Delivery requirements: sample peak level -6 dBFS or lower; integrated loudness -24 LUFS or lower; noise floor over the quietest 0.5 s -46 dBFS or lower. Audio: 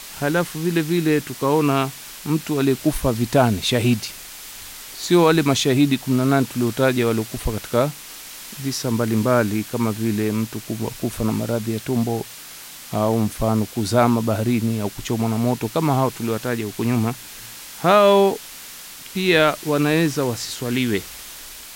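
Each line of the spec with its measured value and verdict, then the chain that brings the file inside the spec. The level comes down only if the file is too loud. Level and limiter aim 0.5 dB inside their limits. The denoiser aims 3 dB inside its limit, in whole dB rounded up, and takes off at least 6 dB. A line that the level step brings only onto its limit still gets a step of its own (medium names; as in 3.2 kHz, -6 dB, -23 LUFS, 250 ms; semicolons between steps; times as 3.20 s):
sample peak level -4.0 dBFS: fail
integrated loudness -20.5 LUFS: fail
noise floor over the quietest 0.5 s -39 dBFS: fail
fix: noise reduction 6 dB, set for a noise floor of -39 dBFS; trim -4 dB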